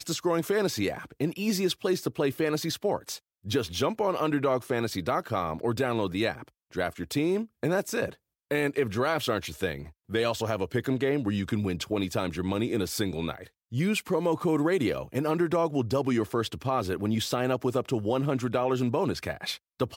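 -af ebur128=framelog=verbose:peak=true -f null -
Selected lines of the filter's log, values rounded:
Integrated loudness:
  I:         -28.7 LUFS
  Threshold: -38.8 LUFS
Loudness range:
  LRA:         2.1 LU
  Threshold: -48.8 LUFS
  LRA low:   -29.7 LUFS
  LRA high:  -27.6 LUFS
True peak:
  Peak:      -12.8 dBFS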